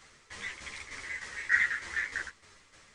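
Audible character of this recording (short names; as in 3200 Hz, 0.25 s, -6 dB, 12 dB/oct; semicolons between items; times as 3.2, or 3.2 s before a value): tremolo saw down 3.3 Hz, depth 65%; a shimmering, thickened sound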